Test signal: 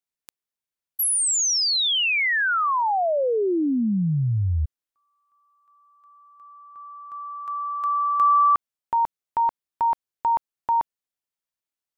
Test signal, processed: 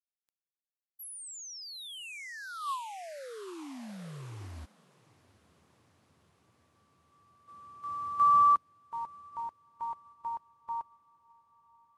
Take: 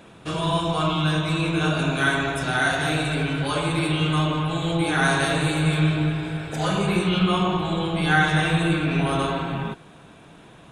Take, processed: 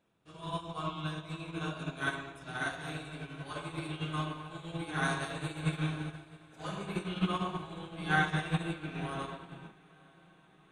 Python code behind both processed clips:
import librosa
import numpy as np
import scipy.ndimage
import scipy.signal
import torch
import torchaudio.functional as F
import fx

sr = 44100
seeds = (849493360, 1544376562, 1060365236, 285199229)

p1 = fx.dynamic_eq(x, sr, hz=1100.0, q=5.3, threshold_db=-37.0, ratio=4.0, max_db=5)
p2 = p1 + fx.echo_diffused(p1, sr, ms=849, feedback_pct=73, wet_db=-12.5, dry=0)
p3 = fx.upward_expand(p2, sr, threshold_db=-29.0, expansion=2.5)
y = p3 * librosa.db_to_amplitude(-8.5)